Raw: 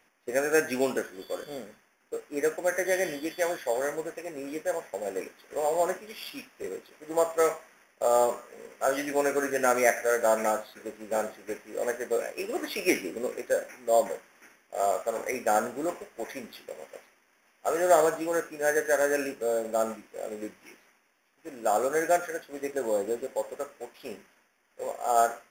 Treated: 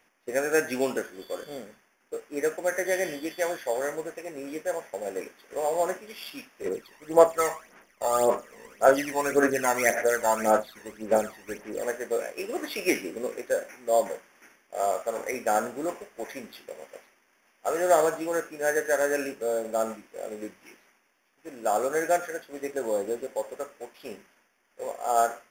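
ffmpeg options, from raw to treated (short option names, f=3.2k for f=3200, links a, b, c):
-filter_complex "[0:a]asplit=3[a][b][c];[a]afade=t=out:st=6.65:d=0.02[d];[b]aphaser=in_gain=1:out_gain=1:delay=1.1:decay=0.64:speed=1.8:type=sinusoidal,afade=t=in:st=6.65:d=0.02,afade=t=out:st=11.82:d=0.02[e];[c]afade=t=in:st=11.82:d=0.02[f];[d][e][f]amix=inputs=3:normalize=0"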